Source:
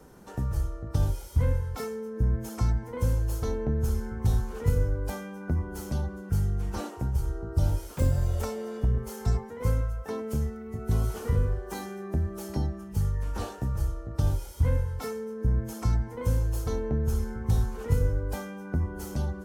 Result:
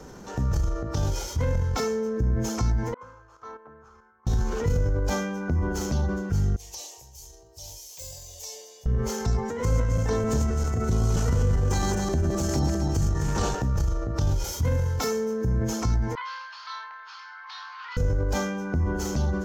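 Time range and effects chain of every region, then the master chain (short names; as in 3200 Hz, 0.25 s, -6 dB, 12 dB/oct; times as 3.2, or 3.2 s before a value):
0.75–1.55 low shelf 140 Hz -7 dB + short-mantissa float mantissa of 8-bit
2.94–4.27 level quantiser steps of 15 dB + band-pass 1200 Hz, Q 4.9 + three-band expander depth 70%
6.56–8.86 pre-emphasis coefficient 0.97 + fixed phaser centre 580 Hz, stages 4
9.45–13.55 regenerating reverse delay 0.132 s, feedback 55%, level -2.5 dB + bell 8000 Hz +7 dB 0.58 oct
14.44–15.63 HPF 69 Hz + high shelf 9100 Hz +11.5 dB
16.15–17.97 Chebyshev band-pass 1000–4600 Hz, order 4 + flutter echo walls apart 4.9 m, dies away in 0.24 s
whole clip: resonant high shelf 7800 Hz -7 dB, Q 3; compressor 3:1, threshold -29 dBFS; transient shaper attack -4 dB, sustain +6 dB; gain +8 dB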